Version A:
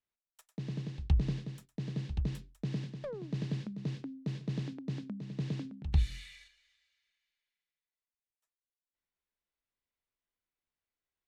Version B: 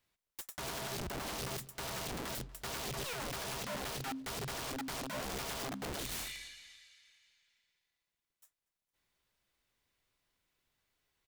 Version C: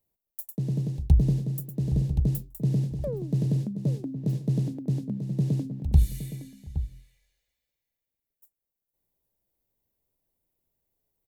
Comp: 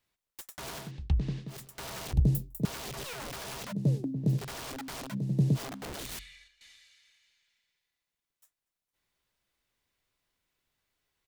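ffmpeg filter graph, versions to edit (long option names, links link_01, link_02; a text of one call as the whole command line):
ffmpeg -i take0.wav -i take1.wav -i take2.wav -filter_complex "[0:a]asplit=2[link_01][link_02];[2:a]asplit=3[link_03][link_04][link_05];[1:a]asplit=6[link_06][link_07][link_08][link_09][link_10][link_11];[link_06]atrim=end=0.92[link_12];[link_01]atrim=start=0.76:end=1.63[link_13];[link_07]atrim=start=1.47:end=2.132[link_14];[link_03]atrim=start=2.128:end=2.652[link_15];[link_08]atrim=start=2.648:end=3.73[link_16];[link_04]atrim=start=3.71:end=4.4[link_17];[link_09]atrim=start=4.38:end=5.15[link_18];[link_05]atrim=start=5.11:end=5.58[link_19];[link_10]atrim=start=5.54:end=6.192[link_20];[link_02]atrim=start=6.188:end=6.612[link_21];[link_11]atrim=start=6.608[link_22];[link_12][link_13]acrossfade=duration=0.16:curve1=tri:curve2=tri[link_23];[link_23][link_14]acrossfade=duration=0.16:curve1=tri:curve2=tri[link_24];[link_24][link_15]acrossfade=duration=0.004:curve1=hsin:curve2=hsin[link_25];[link_25][link_16]acrossfade=duration=0.004:curve1=hsin:curve2=hsin[link_26];[link_26][link_17]acrossfade=duration=0.02:curve1=tri:curve2=tri[link_27];[link_27][link_18]acrossfade=duration=0.02:curve1=tri:curve2=tri[link_28];[link_28][link_19]acrossfade=duration=0.04:curve1=tri:curve2=tri[link_29];[link_29][link_20]acrossfade=duration=0.04:curve1=tri:curve2=tri[link_30];[link_30][link_21]acrossfade=duration=0.004:curve1=hsin:curve2=hsin[link_31];[link_31][link_22]acrossfade=duration=0.004:curve1=hsin:curve2=hsin" out.wav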